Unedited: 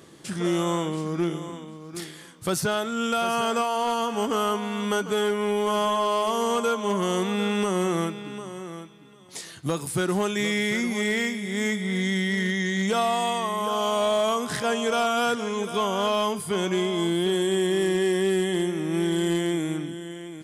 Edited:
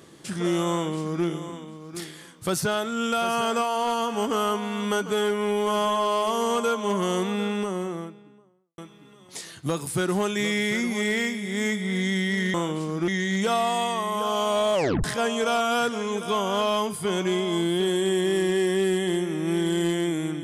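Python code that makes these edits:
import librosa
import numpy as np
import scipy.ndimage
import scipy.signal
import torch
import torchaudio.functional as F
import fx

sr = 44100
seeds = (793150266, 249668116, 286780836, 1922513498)

y = fx.studio_fade_out(x, sr, start_s=7.01, length_s=1.77)
y = fx.edit(y, sr, fx.duplicate(start_s=0.71, length_s=0.54, to_s=12.54),
    fx.tape_stop(start_s=14.2, length_s=0.3), tone=tone)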